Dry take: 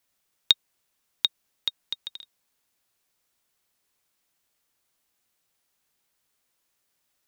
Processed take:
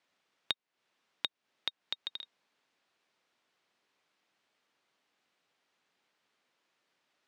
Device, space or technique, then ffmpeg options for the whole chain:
AM radio: -af "highpass=200,lowpass=3500,acompressor=threshold=-37dB:ratio=4,asoftclip=type=tanh:threshold=-14dB,volume=4dB"

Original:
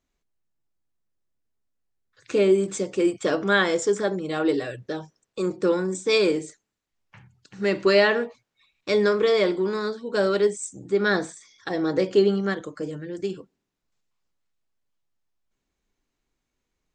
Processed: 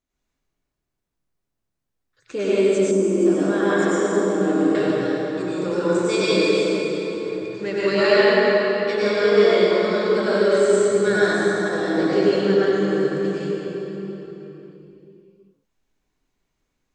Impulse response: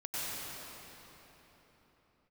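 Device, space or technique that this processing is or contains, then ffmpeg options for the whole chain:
cathedral: -filter_complex "[1:a]atrim=start_sample=2205[link_01];[0:a][link_01]afir=irnorm=-1:irlink=0,asettb=1/sr,asplit=3[link_02][link_03][link_04];[link_02]atrim=end=2.914[link_05];[link_03]atrim=start=2.91:end=4.75,asetpts=PTS-STARTPTS,afade=type=in:duration=0.004:curve=qsin,afade=type=out:start_time=1.836:duration=0.004:curve=qsin,equalizer=frequency=125:width_type=o:width=1:gain=-9,equalizer=frequency=250:width_type=o:width=1:gain=8,equalizer=frequency=500:width_type=o:width=1:gain=-5,equalizer=frequency=2000:width_type=o:width=1:gain=-8,equalizer=frequency=4000:width_type=o:width=1:gain=-10[link_06];[link_04]atrim=start=4.746[link_07];[link_05][link_06]acrossfade=duration=0.004:curve1=hsin:curve2=qsin[link_08];[link_08][link_07]acrossfade=duration=0.004:curve1=qsin:curve2=hsin"

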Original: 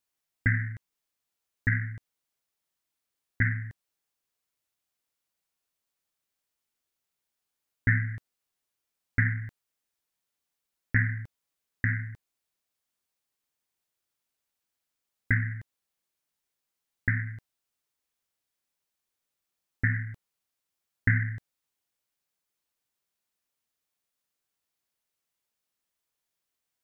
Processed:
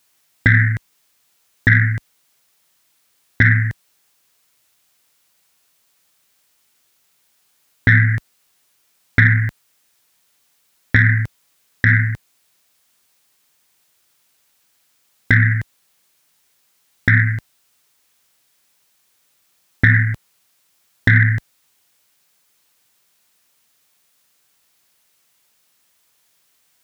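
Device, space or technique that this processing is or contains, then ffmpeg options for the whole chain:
mastering chain: -af "highpass=47,equalizer=frequency=150:width_type=o:width=1.8:gain=3.5,acompressor=threshold=-28dB:ratio=1.5,asoftclip=type=tanh:threshold=-14.5dB,tiltshelf=frequency=700:gain=-3.5,alimiter=level_in=20dB:limit=-1dB:release=50:level=0:latency=1,volume=-1dB"

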